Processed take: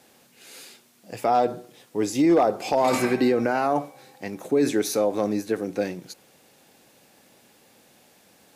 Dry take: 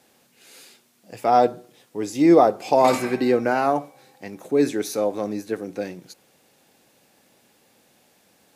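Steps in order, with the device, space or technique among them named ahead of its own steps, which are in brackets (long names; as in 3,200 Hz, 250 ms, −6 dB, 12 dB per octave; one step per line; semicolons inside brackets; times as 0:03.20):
clipper into limiter (hard clipping −8 dBFS, distortion −24 dB; brickwall limiter −15.5 dBFS, peak gain reduction 7.5 dB)
level +3 dB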